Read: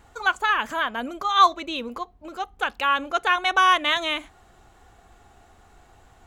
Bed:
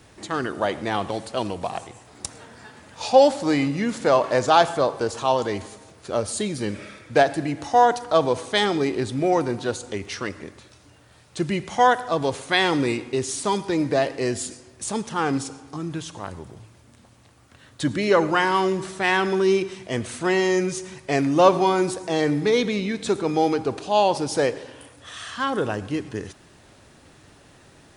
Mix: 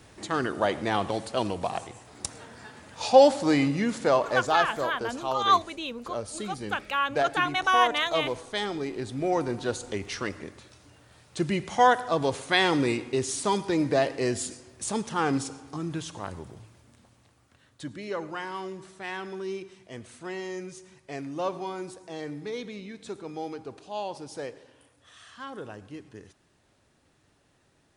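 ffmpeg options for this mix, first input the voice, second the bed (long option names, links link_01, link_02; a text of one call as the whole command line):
ffmpeg -i stem1.wav -i stem2.wav -filter_complex "[0:a]adelay=4100,volume=-5dB[link_01];[1:a]volume=5.5dB,afade=type=out:start_time=3.71:duration=0.93:silence=0.398107,afade=type=in:start_time=8.9:duration=0.96:silence=0.446684,afade=type=out:start_time=16.4:duration=1.51:silence=0.237137[link_02];[link_01][link_02]amix=inputs=2:normalize=0" out.wav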